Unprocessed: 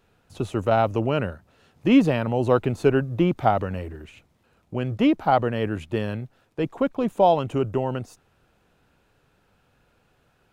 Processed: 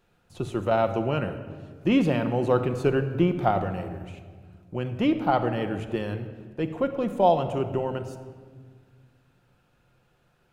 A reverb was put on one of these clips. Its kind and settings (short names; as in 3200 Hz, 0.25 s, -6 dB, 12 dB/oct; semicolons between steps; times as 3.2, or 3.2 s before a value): shoebox room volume 2200 m³, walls mixed, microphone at 0.88 m; gain -3.5 dB